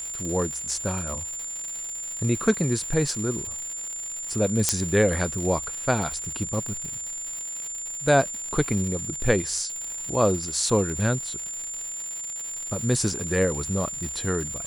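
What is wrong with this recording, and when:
crackle 220 per s -31 dBFS
whine 7.2 kHz -31 dBFS
4.69 s: pop -3 dBFS

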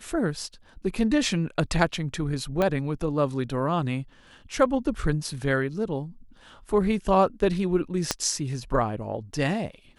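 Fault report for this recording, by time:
2.62 s: pop -12 dBFS
8.11 s: pop -7 dBFS

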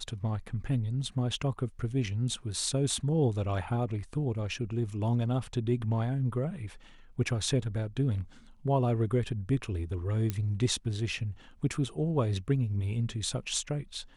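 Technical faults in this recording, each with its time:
10.30 s: pop -17 dBFS

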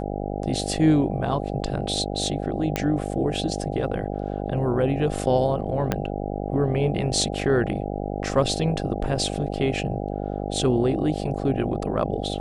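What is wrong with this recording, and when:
buzz 50 Hz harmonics 16 -29 dBFS
2.76 s: pop -9 dBFS
5.92 s: pop -8 dBFS

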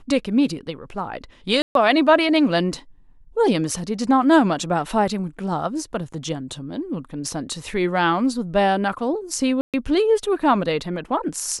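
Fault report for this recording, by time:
1.62–1.75 s: dropout 132 ms
9.61–9.74 s: dropout 127 ms

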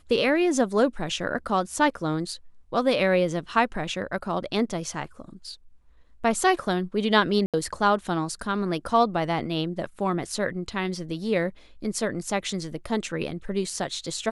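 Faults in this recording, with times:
7.46–7.54 s: dropout 77 ms

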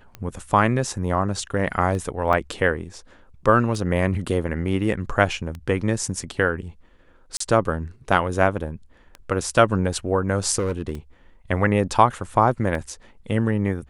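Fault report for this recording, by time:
tick 33 1/3 rpm -20 dBFS
2.33 s: dropout 3.4 ms
7.37–7.40 s: dropout 34 ms
10.58–10.92 s: clipped -19.5 dBFS

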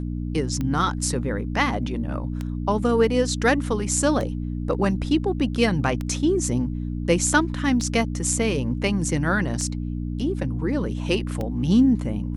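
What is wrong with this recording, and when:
hum 60 Hz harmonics 5 -28 dBFS
tick 33 1/3 rpm -16 dBFS

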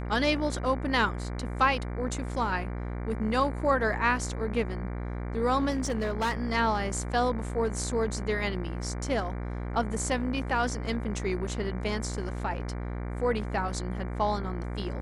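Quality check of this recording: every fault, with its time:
buzz 60 Hz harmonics 39 -34 dBFS
5.70–6.33 s: clipped -24 dBFS

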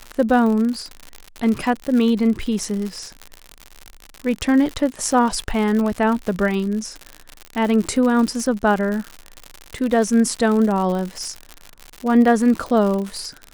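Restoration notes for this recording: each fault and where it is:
crackle 95 per s -24 dBFS

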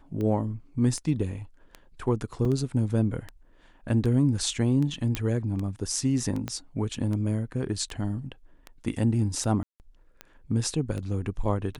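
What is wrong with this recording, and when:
tick 78 rpm -22 dBFS
2.45 s: dropout 3 ms
5.15 s: pop -13 dBFS
6.48 s: pop -17 dBFS
9.63–9.80 s: dropout 169 ms

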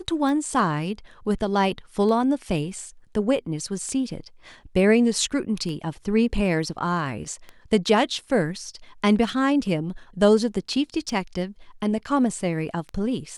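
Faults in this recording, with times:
tick 33 1/3 rpm

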